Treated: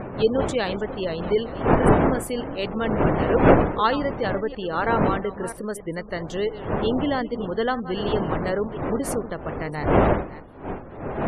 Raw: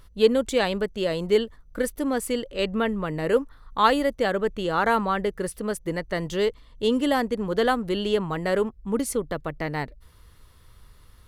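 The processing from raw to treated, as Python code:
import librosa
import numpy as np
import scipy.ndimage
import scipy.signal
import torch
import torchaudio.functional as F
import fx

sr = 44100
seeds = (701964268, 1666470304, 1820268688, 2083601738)

y = fx.reverse_delay(x, sr, ms=325, wet_db=-13.0)
y = fx.dmg_wind(y, sr, seeds[0], corner_hz=590.0, level_db=-23.0)
y = fx.spec_gate(y, sr, threshold_db=-30, keep='strong')
y = y * librosa.db_to_amplitude(-2.0)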